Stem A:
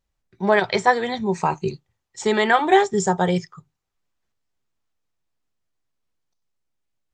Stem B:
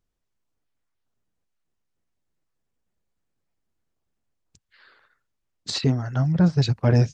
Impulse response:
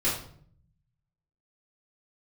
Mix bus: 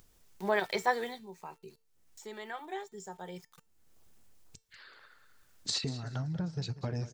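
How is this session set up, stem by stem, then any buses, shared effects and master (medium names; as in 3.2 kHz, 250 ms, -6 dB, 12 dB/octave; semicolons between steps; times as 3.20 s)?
1.04 s -6 dB -> 1.27 s -19 dB -> 3.20 s -19 dB -> 3.75 s -7 dB, 0.00 s, no send, no echo send, high-pass 190 Hz 12 dB/octave; treble shelf 5.9 kHz -6 dB; small samples zeroed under -40.5 dBFS
-0.5 dB, 0.00 s, no send, echo send -15.5 dB, compression 5:1, threshold -27 dBFS, peak gain reduction 12.5 dB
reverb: none
echo: feedback delay 190 ms, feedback 26%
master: treble shelf 5.2 kHz +9.5 dB; upward compressor, threshold -41 dBFS; feedback comb 450 Hz, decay 0.36 s, harmonics all, mix 50%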